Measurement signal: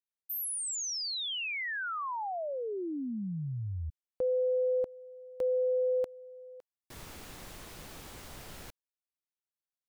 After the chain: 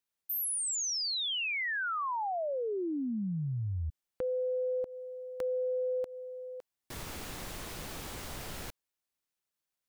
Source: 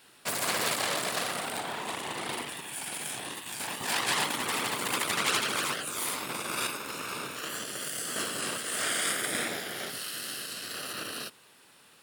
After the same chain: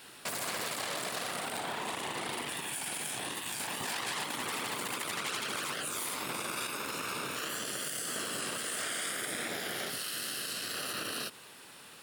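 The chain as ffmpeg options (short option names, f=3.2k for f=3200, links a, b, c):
-af "acompressor=threshold=-37dB:ratio=6:attack=1.2:release=214:knee=6:detection=peak,volume=6dB"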